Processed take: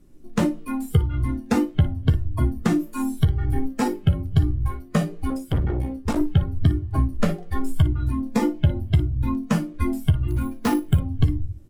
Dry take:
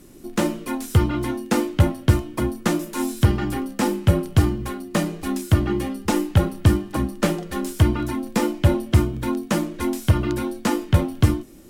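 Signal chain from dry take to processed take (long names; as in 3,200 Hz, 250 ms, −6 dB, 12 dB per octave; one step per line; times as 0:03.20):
spectral tilt −1.5 dB per octave
convolution reverb RT60 0.45 s, pre-delay 7 ms, DRR 14.5 dB
noise reduction from a noise print of the clip's start 14 dB
low-shelf EQ 74 Hz +10 dB
0:05.30–0:06.21: tube saturation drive 18 dB, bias 0.7
downward compressor 5 to 1, threshold −16 dBFS, peak gain reduction 14 dB
ambience of single reflections 13 ms −10 dB, 57 ms −15 dB
0:10.28–0:11.00: sample-rate reduction 11,000 Hz, jitter 0%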